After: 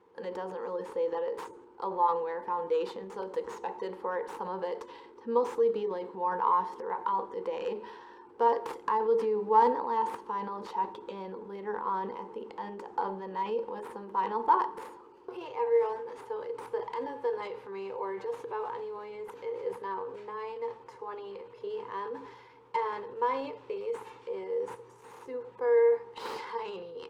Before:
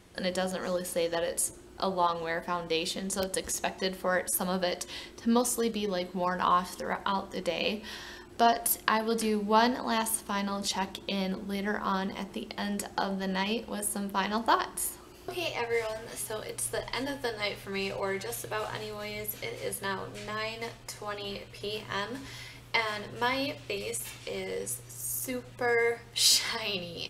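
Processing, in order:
stylus tracing distortion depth 0.18 ms
pair of resonant band-passes 650 Hz, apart 0.97 octaves
transient designer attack 0 dB, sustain +6 dB
level +5.5 dB

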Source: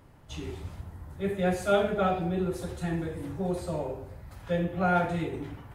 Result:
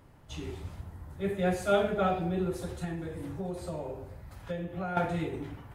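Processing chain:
0:02.84–0:04.97: downward compressor 6 to 1, threshold −31 dBFS, peak gain reduction 10 dB
level −1.5 dB

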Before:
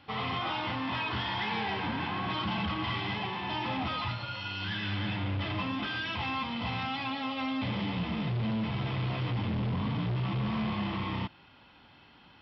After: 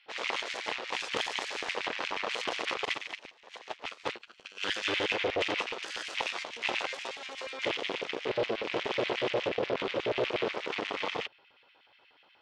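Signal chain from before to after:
low shelf with overshoot 140 Hz +10 dB, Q 1.5
harmonic generator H 6 −16 dB, 7 −13 dB, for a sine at −15.5 dBFS
auto-filter high-pass square 8.3 Hz 470–2,200 Hz
0:02.85–0:04.63: expander for the loud parts 2.5 to 1, over −40 dBFS
level −1.5 dB

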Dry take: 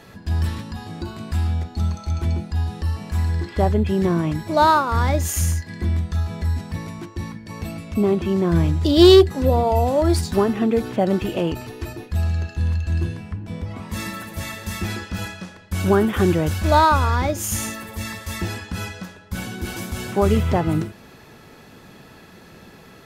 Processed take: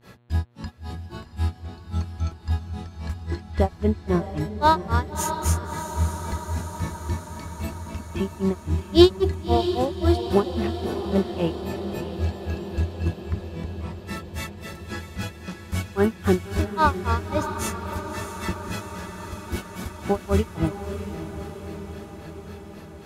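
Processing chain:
granular cloud 187 ms, grains 3.7 per second, pitch spread up and down by 0 semitones
feedback delay with all-pass diffusion 628 ms, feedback 69%, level −9 dB
hum with harmonics 120 Hz, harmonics 36, −60 dBFS −7 dB per octave

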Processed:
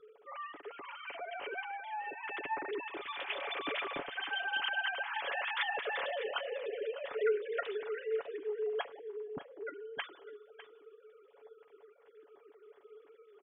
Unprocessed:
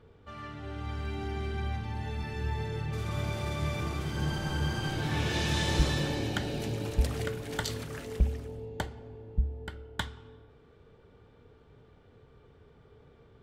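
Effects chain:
three sine waves on the formant tracks
comb filter 7.1 ms, depth 49%
single-tap delay 602 ms −15 dB
level −7.5 dB

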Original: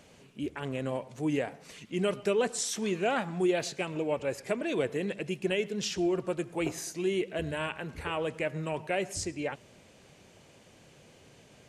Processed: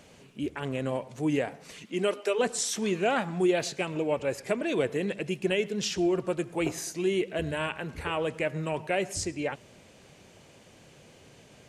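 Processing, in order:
0:01.82–0:02.38: high-pass filter 140 Hz → 470 Hz 24 dB per octave
level +2.5 dB

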